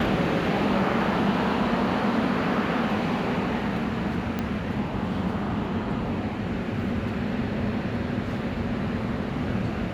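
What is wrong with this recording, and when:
4.39 pop -14 dBFS

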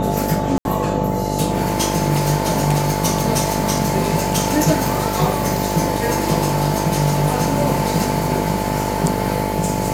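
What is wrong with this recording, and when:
buzz 50 Hz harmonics 14 -23 dBFS
tone 870 Hz -25 dBFS
0.58–0.65 gap 71 ms

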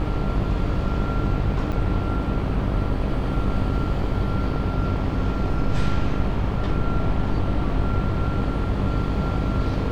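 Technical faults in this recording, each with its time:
buzz 50 Hz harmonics 27 -27 dBFS
1.72–1.73 gap 5.9 ms

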